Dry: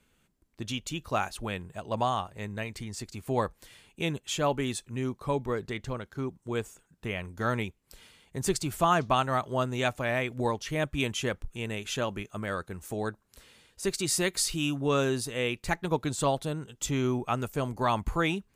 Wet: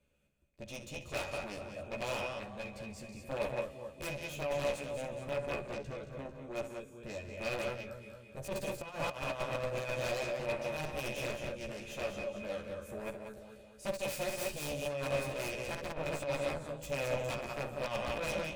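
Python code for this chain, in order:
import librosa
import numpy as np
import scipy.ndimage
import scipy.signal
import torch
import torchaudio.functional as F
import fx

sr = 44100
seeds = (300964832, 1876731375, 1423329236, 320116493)

y = fx.echo_feedback(x, sr, ms=223, feedback_pct=50, wet_db=-8.5)
y = fx.cheby_harmonics(y, sr, harmonics=(4, 7), levels_db=(-23, -14), full_scale_db=-10.0)
y = fx.low_shelf(y, sr, hz=230.0, db=7.5)
y = fx.doubler(y, sr, ms=14.0, db=-3.0)
y = fx.echo_multitap(y, sr, ms=(41, 65, 140, 189), db=(-19.5, -14.0, -17.5, -9.5))
y = fx.over_compress(y, sr, threshold_db=-28.0, ratio=-0.5)
y = 10.0 ** (-22.5 / 20.0) * (np.abs((y / 10.0 ** (-22.5 / 20.0) + 3.0) % 4.0 - 2.0) - 1.0)
y = fx.small_body(y, sr, hz=(570.0, 2500.0), ring_ms=45, db=16)
y = F.gain(torch.from_numpy(y), -8.0).numpy()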